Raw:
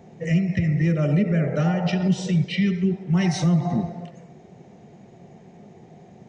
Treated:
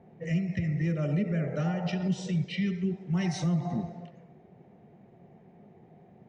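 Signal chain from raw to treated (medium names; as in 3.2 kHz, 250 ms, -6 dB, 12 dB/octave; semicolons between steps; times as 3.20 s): level-controlled noise filter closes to 2 kHz, open at -21 dBFS; trim -8 dB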